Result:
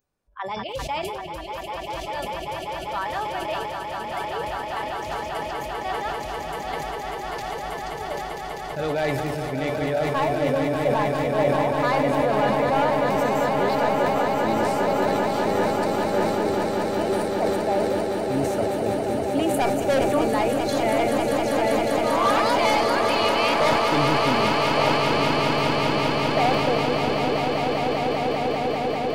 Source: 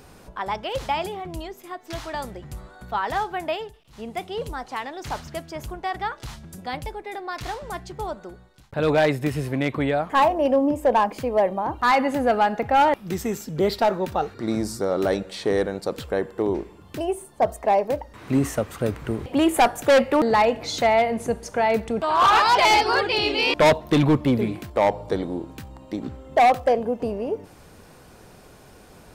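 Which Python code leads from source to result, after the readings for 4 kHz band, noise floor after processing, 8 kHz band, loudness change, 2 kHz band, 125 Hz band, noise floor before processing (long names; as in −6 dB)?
+1.0 dB, −33 dBFS, +0.5 dB, −0.5 dB, +0.5 dB, +0.5 dB, −49 dBFS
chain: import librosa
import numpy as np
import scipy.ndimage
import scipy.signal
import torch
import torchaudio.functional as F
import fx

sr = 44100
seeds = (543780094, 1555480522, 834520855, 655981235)

p1 = fx.noise_reduce_blind(x, sr, reduce_db=26)
p2 = fx.comb_fb(p1, sr, f0_hz=580.0, decay_s=0.31, harmonics='all', damping=0.0, mix_pct=70)
p3 = fx.level_steps(p2, sr, step_db=19)
p4 = p2 + (p3 * 10.0 ** (3.0 / 20.0))
p5 = fx.hum_notches(p4, sr, base_hz=60, count=6)
p6 = p5 + fx.echo_swell(p5, sr, ms=197, loudest=8, wet_db=-7.0, dry=0)
y = fx.sustainer(p6, sr, db_per_s=27.0)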